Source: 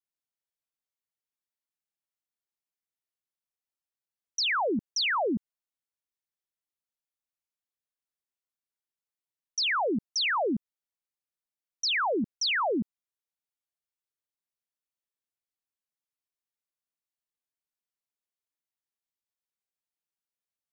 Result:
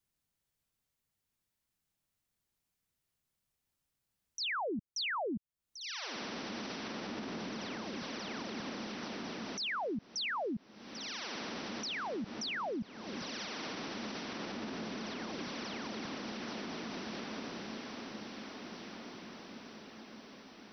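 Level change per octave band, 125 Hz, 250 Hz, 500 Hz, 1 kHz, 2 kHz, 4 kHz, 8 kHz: -0.5 dB, -3.5 dB, -6.5 dB, -7.0 dB, -7.0 dB, -7.0 dB, no reading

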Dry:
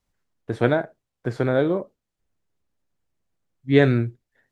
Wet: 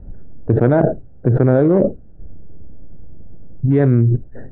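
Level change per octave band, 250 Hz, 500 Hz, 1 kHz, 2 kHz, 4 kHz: +7.5 dB, +5.5 dB, +4.0 dB, -4.0 dB, under -15 dB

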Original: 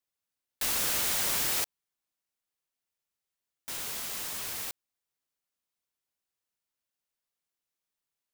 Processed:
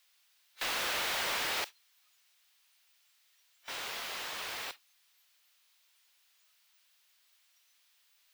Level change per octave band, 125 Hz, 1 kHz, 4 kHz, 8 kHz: -9.5 dB, +2.5 dB, -0.5 dB, -10.0 dB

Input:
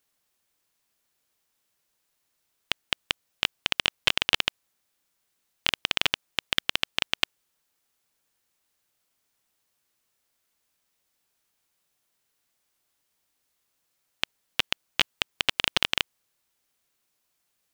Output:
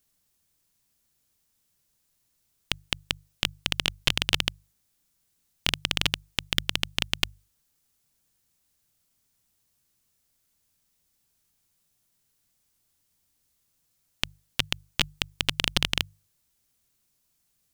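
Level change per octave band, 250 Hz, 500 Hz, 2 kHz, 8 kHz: +5.0 dB, -1.5 dB, -2.0 dB, +3.5 dB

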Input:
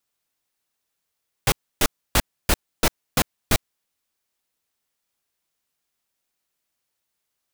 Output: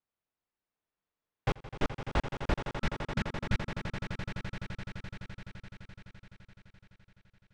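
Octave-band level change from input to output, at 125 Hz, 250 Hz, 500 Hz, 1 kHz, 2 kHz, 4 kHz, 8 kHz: -3.0 dB, -5.5 dB, -7.0 dB, -8.0 dB, -8.5 dB, -15.0 dB, -26.5 dB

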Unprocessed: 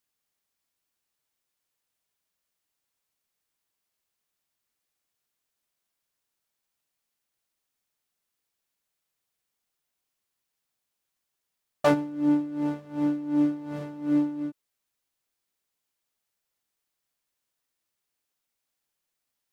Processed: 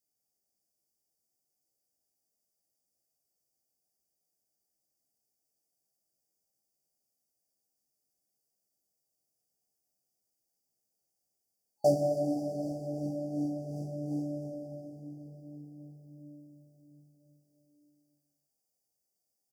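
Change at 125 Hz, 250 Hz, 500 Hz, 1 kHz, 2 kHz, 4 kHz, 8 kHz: +0.5 dB, -9.5 dB, +0.5 dB, -6.5 dB, under -40 dB, -8.5 dB, no reading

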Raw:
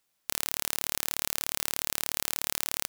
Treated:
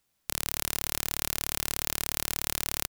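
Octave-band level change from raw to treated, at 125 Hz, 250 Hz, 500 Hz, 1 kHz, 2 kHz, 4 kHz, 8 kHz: +8.0 dB, +4.0 dB, +1.5 dB, +0.5 dB, 0.0 dB, 0.0 dB, 0.0 dB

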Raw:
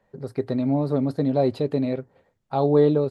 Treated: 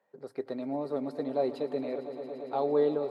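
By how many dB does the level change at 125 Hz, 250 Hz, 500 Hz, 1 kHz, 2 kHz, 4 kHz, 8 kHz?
-22.0 dB, -12.0 dB, -7.0 dB, -6.0 dB, -6.5 dB, -8.0 dB, no reading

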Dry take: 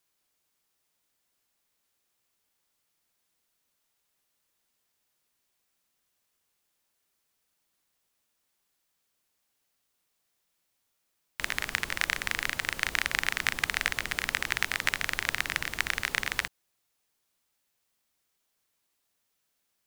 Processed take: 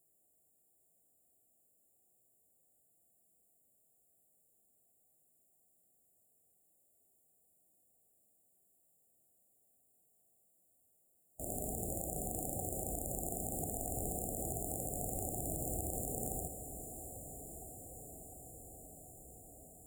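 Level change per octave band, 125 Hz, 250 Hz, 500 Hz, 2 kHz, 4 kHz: +3.5 dB, +4.0 dB, +3.5 dB, under -40 dB, under -40 dB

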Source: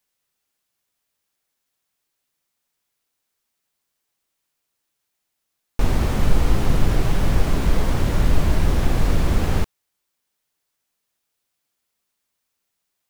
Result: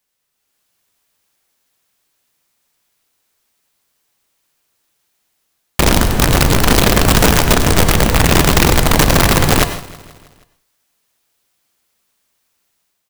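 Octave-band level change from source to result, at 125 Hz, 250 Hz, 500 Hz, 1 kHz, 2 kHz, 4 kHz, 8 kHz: +7.0 dB, +10.0 dB, +12.5 dB, +14.0 dB, +16.0 dB, +18.0 dB, +20.5 dB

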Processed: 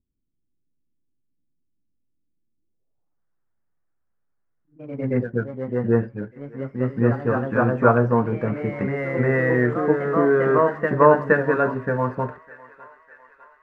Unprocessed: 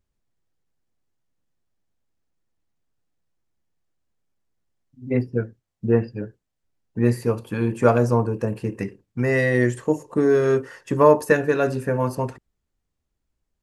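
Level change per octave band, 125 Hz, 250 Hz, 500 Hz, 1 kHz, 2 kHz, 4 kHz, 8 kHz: 0.0 dB, +0.5 dB, +0.5 dB, +4.0 dB, +3.0 dB, no reading, under -20 dB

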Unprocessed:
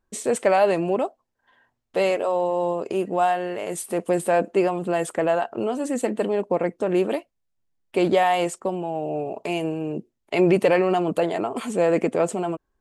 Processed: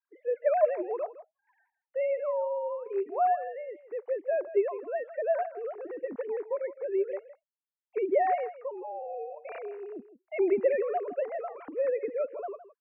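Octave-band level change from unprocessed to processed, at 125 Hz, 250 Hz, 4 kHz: under -35 dB, -15.5 dB, under -30 dB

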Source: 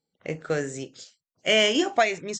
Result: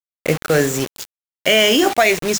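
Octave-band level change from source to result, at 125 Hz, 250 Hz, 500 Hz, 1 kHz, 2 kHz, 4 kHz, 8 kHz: +12.0 dB, +9.0 dB, +8.5 dB, +7.5 dB, +8.5 dB, +7.5 dB, +11.5 dB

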